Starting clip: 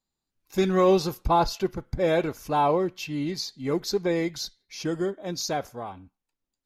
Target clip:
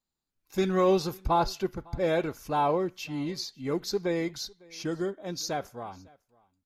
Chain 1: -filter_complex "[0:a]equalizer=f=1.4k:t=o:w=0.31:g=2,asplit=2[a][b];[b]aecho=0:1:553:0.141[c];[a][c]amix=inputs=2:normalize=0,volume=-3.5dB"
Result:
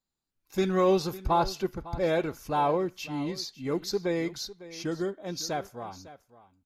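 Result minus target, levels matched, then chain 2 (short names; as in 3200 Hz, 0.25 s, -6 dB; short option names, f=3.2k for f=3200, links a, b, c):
echo-to-direct +9 dB
-filter_complex "[0:a]equalizer=f=1.4k:t=o:w=0.31:g=2,asplit=2[a][b];[b]aecho=0:1:553:0.0501[c];[a][c]amix=inputs=2:normalize=0,volume=-3.5dB"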